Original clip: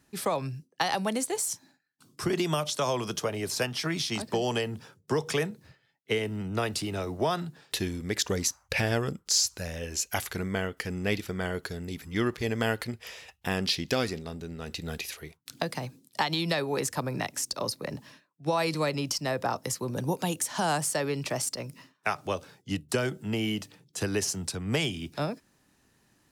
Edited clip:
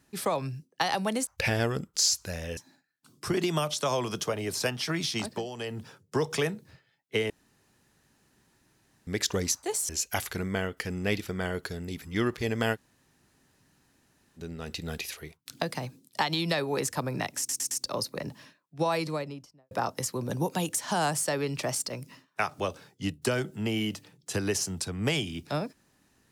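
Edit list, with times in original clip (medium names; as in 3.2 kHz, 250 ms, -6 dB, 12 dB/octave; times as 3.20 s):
1.27–1.53 s: swap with 8.59–9.89 s
4.20–4.78 s: dip -11.5 dB, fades 0.26 s
6.26–8.03 s: room tone
12.75–14.39 s: room tone, crossfade 0.06 s
17.38 s: stutter 0.11 s, 4 plays
18.46–19.38 s: studio fade out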